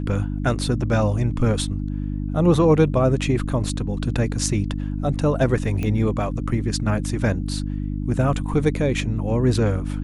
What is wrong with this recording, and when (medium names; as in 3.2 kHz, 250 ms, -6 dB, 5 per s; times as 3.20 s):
hum 50 Hz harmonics 6 -26 dBFS
5.83 s: pop -14 dBFS